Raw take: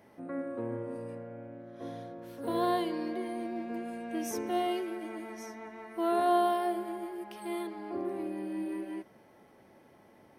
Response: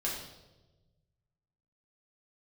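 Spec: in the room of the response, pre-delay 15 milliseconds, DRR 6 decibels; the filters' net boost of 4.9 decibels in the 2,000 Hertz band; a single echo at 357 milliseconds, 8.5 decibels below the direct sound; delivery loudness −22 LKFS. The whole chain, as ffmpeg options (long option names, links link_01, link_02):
-filter_complex "[0:a]equalizer=frequency=2000:width_type=o:gain=6,aecho=1:1:357:0.376,asplit=2[link_01][link_02];[1:a]atrim=start_sample=2205,adelay=15[link_03];[link_02][link_03]afir=irnorm=-1:irlink=0,volume=-10.5dB[link_04];[link_01][link_04]amix=inputs=2:normalize=0,volume=9.5dB"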